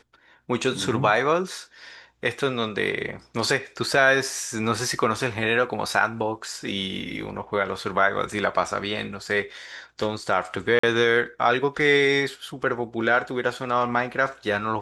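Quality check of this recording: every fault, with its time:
10.79–10.83 s: dropout 44 ms

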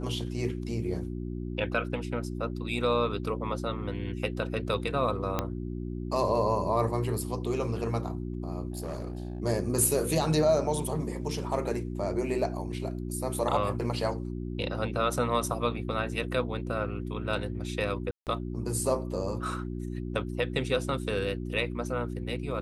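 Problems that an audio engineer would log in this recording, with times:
hum 60 Hz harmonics 6 -35 dBFS
5.39 s: pop -13 dBFS
8.72–9.40 s: clipped -30.5 dBFS
18.11–18.27 s: dropout 158 ms

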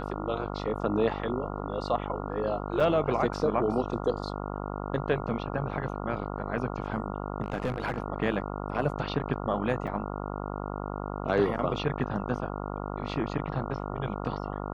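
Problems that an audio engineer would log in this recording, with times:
buzz 50 Hz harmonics 28 -35 dBFS
2.80 s: dropout 4.1 ms
7.44–7.99 s: clipped -24 dBFS
9.87–9.88 s: dropout 5.8 ms

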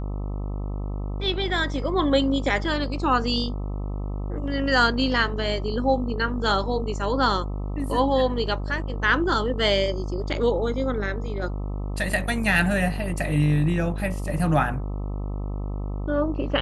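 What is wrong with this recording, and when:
buzz 50 Hz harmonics 26 -29 dBFS

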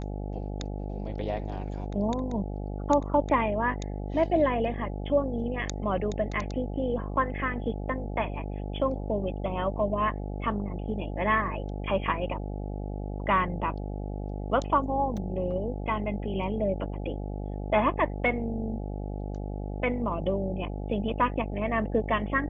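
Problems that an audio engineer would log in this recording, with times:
buzz 50 Hz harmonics 17 -34 dBFS
15.17 s: dropout 3.7 ms

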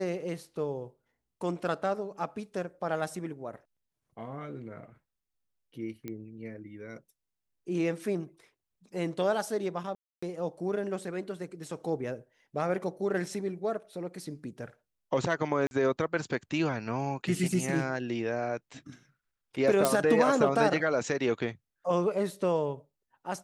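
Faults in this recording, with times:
6.08 s: pop -24 dBFS
9.95–10.22 s: dropout 275 ms
15.67–15.71 s: dropout 41 ms
19.85 s: pop

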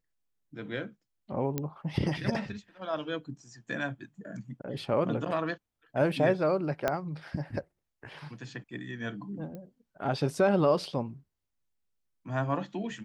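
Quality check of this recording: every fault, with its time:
1.58 s: pop -16 dBFS
6.88 s: pop -13 dBFS
9.55 s: pop -30 dBFS

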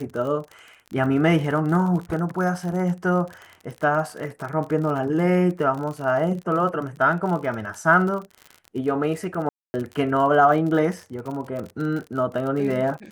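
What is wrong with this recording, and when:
crackle 48 per s -30 dBFS
9.49–9.74 s: dropout 250 ms

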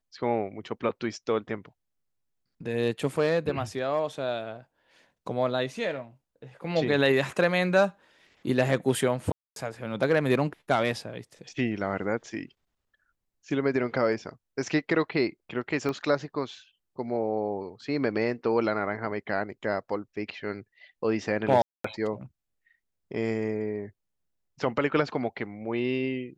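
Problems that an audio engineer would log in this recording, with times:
9.32–9.56 s: dropout 242 ms
15.89 s: pop -19 dBFS
21.62–21.84 s: dropout 224 ms

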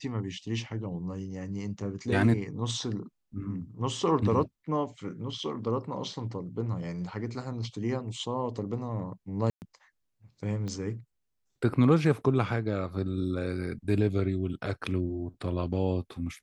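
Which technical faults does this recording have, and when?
9.50–9.62 s: dropout 119 ms
10.68 s: pop -26 dBFS

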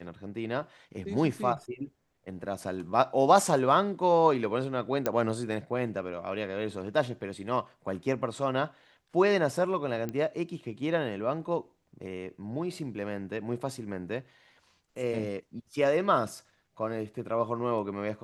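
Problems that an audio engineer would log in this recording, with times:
5.06 s: pop -13 dBFS
10.09 s: pop -21 dBFS

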